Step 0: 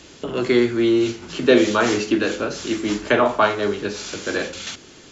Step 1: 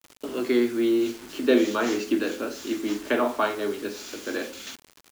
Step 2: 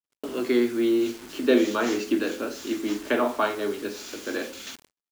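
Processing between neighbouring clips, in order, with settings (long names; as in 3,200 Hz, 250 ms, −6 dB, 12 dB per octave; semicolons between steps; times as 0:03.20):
low shelf with overshoot 200 Hz −7 dB, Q 3; bit reduction 6 bits; level −8 dB
noise gate −50 dBFS, range −41 dB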